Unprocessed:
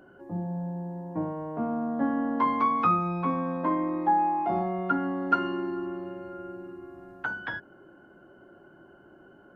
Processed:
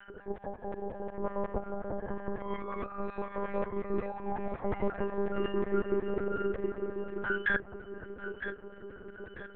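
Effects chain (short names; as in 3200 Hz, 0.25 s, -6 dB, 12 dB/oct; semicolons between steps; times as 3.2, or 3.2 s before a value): reverb removal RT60 0.57 s; negative-ratio compressor -35 dBFS, ratio -1; LFO high-pass square 5.5 Hz 370–1700 Hz; echo with dull and thin repeats by turns 0.476 s, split 890 Hz, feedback 64%, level -6 dB; monotone LPC vocoder at 8 kHz 200 Hz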